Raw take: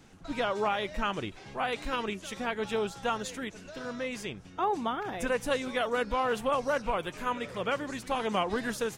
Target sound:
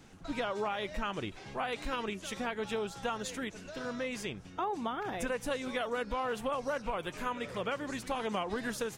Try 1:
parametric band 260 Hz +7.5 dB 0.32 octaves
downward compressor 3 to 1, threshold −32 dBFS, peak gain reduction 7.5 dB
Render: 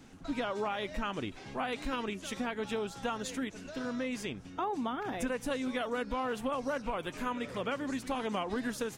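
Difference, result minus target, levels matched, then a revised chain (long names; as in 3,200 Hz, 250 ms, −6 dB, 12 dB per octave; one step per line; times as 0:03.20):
250 Hz band +3.0 dB
downward compressor 3 to 1, threshold −32 dBFS, peak gain reduction 6.5 dB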